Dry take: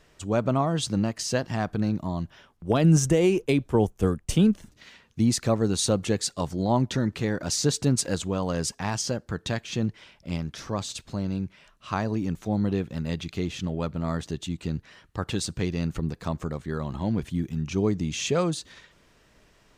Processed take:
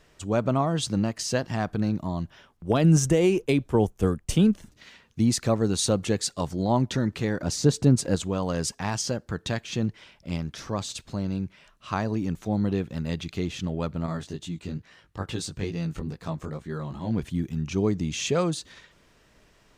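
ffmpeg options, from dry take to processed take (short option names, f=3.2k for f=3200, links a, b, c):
-filter_complex "[0:a]asettb=1/sr,asplit=3[a][b][c];[a]atrim=end=7.424[d];[b]atrim=start=7.42:end=8.16,asetpts=PTS-STARTPTS,afade=t=in:d=0.004:c=qsin,afade=t=out:st=0.736:d=0.004:c=qsin,tiltshelf=f=970:g=4.5[e];[c]atrim=start=8.156[f];[d][e]acrossfade=d=0.004:c1=hsin:c2=qsin[g];[g][f]acrossfade=d=0.004:c1=qsin:c2=hsin,asettb=1/sr,asplit=3[h][i][j];[h]atrim=end=14.064[k];[i]atrim=start=14.06:end=17.12,asetpts=PTS-STARTPTS,afade=t=in:d=0.004:c=qsin,afade=t=out:st=3.056:d=0.004:c=qsin,flanger=delay=17.5:depth=3.6:speed=2.3[l];[j]atrim=start=17.116[m];[k][l]acrossfade=d=0.004:c1=hsin:c2=qsin[n];[n][m]acrossfade=d=0.004:c1=qsin:c2=hsin"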